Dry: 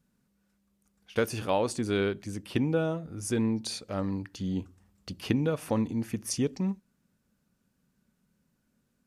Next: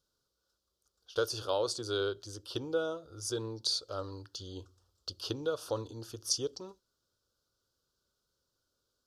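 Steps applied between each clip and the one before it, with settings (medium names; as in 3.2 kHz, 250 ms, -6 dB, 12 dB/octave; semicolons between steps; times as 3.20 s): FFT filter 110 Hz 0 dB, 200 Hz -20 dB, 350 Hz +3 dB, 520 Hz +6 dB, 780 Hz -1 dB, 1.4 kHz +8 dB, 2.1 kHz -22 dB, 3.2 kHz +9 dB, 4.8 kHz +15 dB, 8.5 kHz +3 dB; trim -8 dB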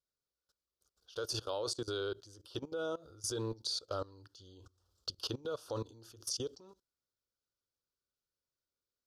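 level held to a coarse grid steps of 20 dB; trim +3.5 dB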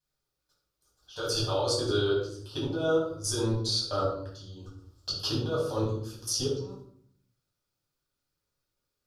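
reverberation RT60 0.60 s, pre-delay 7 ms, DRR -6.5 dB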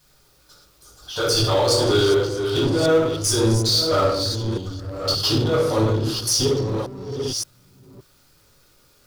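chunks repeated in reverse 572 ms, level -9 dB; power-law waveshaper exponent 0.7; trim +6.5 dB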